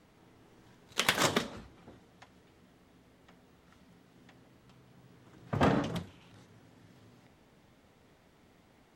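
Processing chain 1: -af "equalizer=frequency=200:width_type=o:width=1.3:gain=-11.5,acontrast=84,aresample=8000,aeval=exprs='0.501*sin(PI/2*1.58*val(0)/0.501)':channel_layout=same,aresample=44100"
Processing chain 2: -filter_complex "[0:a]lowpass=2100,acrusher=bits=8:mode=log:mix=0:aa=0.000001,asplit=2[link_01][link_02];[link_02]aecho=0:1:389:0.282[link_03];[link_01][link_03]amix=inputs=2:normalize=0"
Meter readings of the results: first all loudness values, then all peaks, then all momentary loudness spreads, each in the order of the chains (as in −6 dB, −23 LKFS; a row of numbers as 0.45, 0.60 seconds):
−20.0, −33.5 LKFS; −2.0, −13.5 dBFS; 16, 17 LU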